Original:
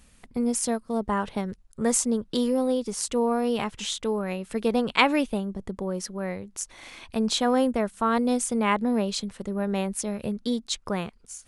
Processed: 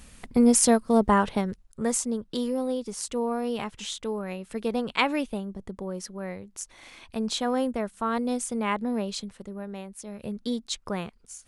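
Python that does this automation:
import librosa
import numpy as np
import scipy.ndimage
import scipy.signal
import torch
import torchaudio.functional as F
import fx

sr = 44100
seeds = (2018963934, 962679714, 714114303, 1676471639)

y = fx.gain(x, sr, db=fx.line((1.02, 7.0), (2.0, -4.0), (9.2, -4.0), (9.93, -13.0), (10.38, -2.5)))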